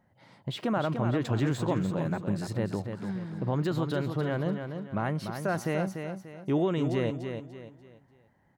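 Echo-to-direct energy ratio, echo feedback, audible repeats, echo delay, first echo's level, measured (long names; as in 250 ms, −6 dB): −6.5 dB, 35%, 4, 293 ms, −7.0 dB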